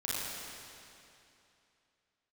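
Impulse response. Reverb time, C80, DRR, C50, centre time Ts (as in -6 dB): 2.8 s, -3.0 dB, -8.5 dB, -6.0 dB, 197 ms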